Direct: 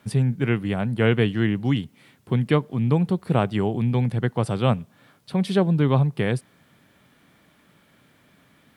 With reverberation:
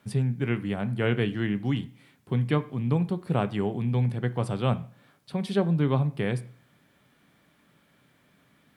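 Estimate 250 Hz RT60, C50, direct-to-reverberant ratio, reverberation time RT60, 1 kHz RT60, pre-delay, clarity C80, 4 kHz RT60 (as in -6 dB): 0.55 s, 18.0 dB, 11.0 dB, 0.50 s, 0.50 s, 5 ms, 22.0 dB, 0.45 s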